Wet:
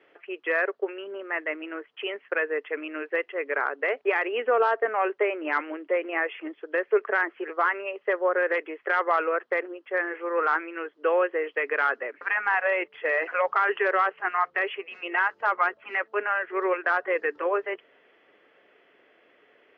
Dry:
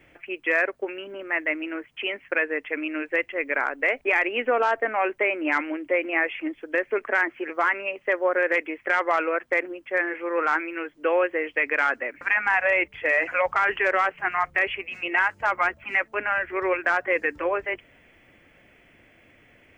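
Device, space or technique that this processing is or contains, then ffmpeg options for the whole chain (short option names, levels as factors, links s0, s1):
phone earpiece: -af "highpass=420,equalizer=f=420:t=q:w=4:g=10,equalizer=f=1200:t=q:w=4:g=4,equalizer=f=2300:t=q:w=4:g=-8,lowpass=f=4500:w=0.5412,lowpass=f=4500:w=1.3066,volume=0.794"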